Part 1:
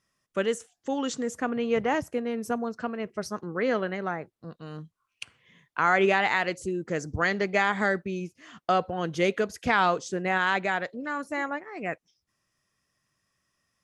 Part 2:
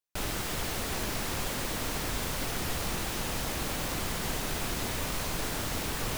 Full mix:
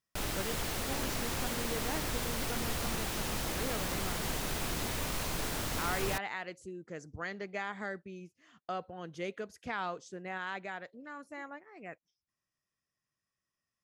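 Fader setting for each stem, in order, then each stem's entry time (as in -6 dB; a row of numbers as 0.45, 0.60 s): -14.0, -2.5 dB; 0.00, 0.00 s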